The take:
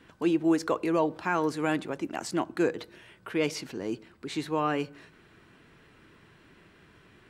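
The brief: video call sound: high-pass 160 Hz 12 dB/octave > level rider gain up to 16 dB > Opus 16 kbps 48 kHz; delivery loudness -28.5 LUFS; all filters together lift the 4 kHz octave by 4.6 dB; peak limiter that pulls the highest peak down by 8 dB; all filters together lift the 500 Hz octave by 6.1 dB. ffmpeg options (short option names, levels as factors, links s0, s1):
-af "equalizer=f=500:t=o:g=7.5,equalizer=f=4000:t=o:g=6,alimiter=limit=0.133:level=0:latency=1,highpass=160,dynaudnorm=m=6.31,volume=1.12" -ar 48000 -c:a libopus -b:a 16k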